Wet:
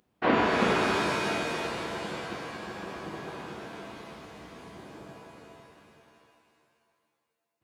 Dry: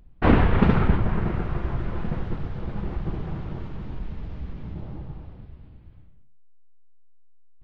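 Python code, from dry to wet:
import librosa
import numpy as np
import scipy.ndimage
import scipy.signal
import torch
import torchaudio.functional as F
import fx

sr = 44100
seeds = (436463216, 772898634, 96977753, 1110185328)

y = scipy.signal.sosfilt(scipy.signal.butter(2, 300.0, 'highpass', fs=sr, output='sos'), x)
y = fx.high_shelf(y, sr, hz=3700.0, db=6.5)
y = fx.rev_shimmer(y, sr, seeds[0], rt60_s=2.2, semitones=7, shimmer_db=-2, drr_db=1.0)
y = y * 10.0 ** (-4.0 / 20.0)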